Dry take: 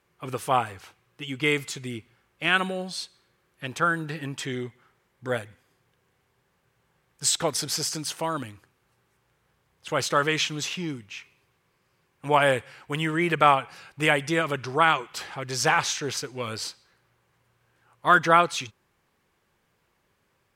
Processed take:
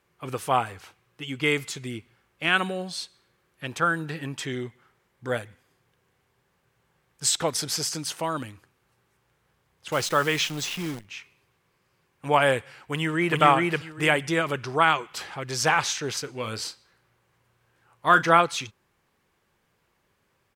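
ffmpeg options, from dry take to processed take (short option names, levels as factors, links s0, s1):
-filter_complex "[0:a]asettb=1/sr,asplit=3[s0][s1][s2];[s0]atrim=end=9.924[s3];[s1]atrim=start=9.92:end=11.05,asetpts=PTS-STARTPTS,afade=t=in:d=0.004:c=qsin,afade=t=out:st=1.126:d=0.004:c=qsin,acrusher=bits=7:dc=4:mix=0:aa=0.000001[s4];[s2]atrim=start=11.046[s5];[s3][s4]acrossfade=d=0.004:c1=hsin:c2=qsin[s6];[s6][s5]acrossfade=d=0.004:c1=qsin:c2=hsin,asplit=2[s7][s8];[s8]afade=t=in:st=12.8:d=0.01,afade=t=out:st=13.4:d=0.01,aecho=0:1:410|820|1230:0.891251|0.17825|0.03565[s9];[s7][s9]amix=inputs=2:normalize=0,asettb=1/sr,asplit=3[s10][s11][s12];[s10]atrim=end=16.234[s13];[s11]atrim=start=16.23:end=18.41,asetpts=PTS-STARTPTS,afade=t=in:d=0.004:c=qsin,afade=t=out:st=2.176:d=0.004:c=qsin,asplit=2[s14][s15];[s15]adelay=36,volume=0.211[s16];[s14][s16]amix=inputs=2:normalize=0,atrim=end_sample=96138[s17];[s12]atrim=start=18.406[s18];[s13][s17]acrossfade=d=0.004:c1=hsin:c2=qsin[s19];[s19][s18]acrossfade=d=0.004:c1=qsin:c2=hsin"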